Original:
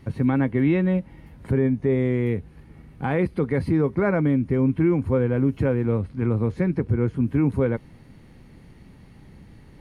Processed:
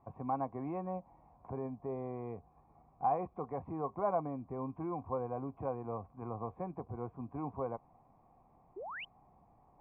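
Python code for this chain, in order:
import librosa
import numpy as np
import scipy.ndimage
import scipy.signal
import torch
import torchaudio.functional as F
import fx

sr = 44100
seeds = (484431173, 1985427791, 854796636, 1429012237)

y = fx.formant_cascade(x, sr, vowel='a')
y = fx.spec_paint(y, sr, seeds[0], shape='rise', start_s=8.76, length_s=0.29, low_hz=340.0, high_hz=3200.0, level_db=-49.0)
y = y * 10.0 ** (5.5 / 20.0)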